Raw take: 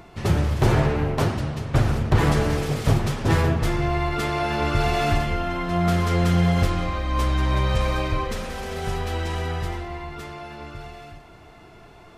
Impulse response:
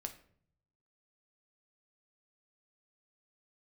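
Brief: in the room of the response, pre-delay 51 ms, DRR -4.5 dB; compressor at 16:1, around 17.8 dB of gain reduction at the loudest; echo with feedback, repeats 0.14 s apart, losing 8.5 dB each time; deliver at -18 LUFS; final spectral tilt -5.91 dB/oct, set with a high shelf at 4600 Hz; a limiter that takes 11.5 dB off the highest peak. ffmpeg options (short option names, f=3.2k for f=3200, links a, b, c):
-filter_complex "[0:a]highshelf=f=4.6k:g=-7.5,acompressor=threshold=-32dB:ratio=16,alimiter=level_in=8dB:limit=-24dB:level=0:latency=1,volume=-8dB,aecho=1:1:140|280|420|560:0.376|0.143|0.0543|0.0206,asplit=2[a][b];[1:a]atrim=start_sample=2205,adelay=51[c];[b][c]afir=irnorm=-1:irlink=0,volume=7dB[d];[a][d]amix=inputs=2:normalize=0,volume=17dB"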